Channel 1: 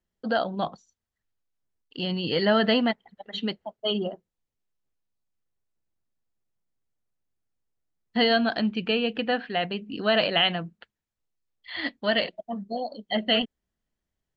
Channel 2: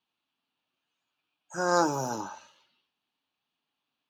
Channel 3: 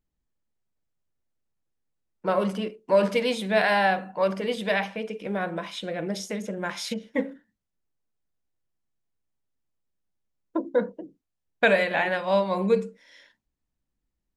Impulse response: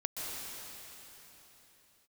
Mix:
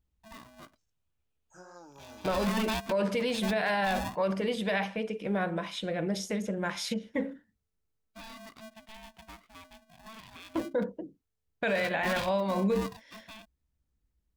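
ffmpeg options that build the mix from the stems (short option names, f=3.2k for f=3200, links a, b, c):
-filter_complex "[0:a]alimiter=limit=-15.5dB:level=0:latency=1:release=124,aeval=exprs='val(0)*sgn(sin(2*PI*440*n/s))':c=same,volume=-7dB[a];[1:a]acompressor=threshold=-35dB:ratio=5,flanger=delay=17:depth=4.9:speed=2.8,volume=-11.5dB[b];[2:a]equalizer=f=67:t=o:w=1.6:g=12.5,volume=-2dB,asplit=2[c][d];[d]apad=whole_len=633658[e];[a][e]sidechaingate=range=-16dB:threshold=-43dB:ratio=16:detection=peak[f];[f][b][c]amix=inputs=3:normalize=0,alimiter=limit=-20.5dB:level=0:latency=1:release=38"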